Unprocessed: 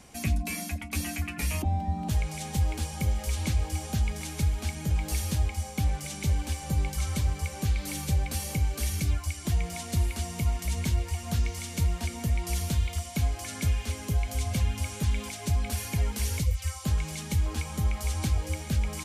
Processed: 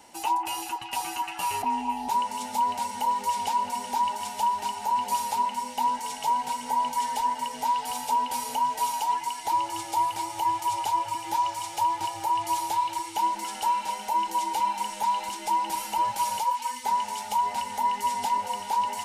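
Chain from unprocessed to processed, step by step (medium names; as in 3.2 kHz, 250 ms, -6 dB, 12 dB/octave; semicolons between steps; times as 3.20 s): every band turned upside down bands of 1 kHz; on a send: repeats whose band climbs or falls 193 ms, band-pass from 1.5 kHz, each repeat 0.7 oct, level -5 dB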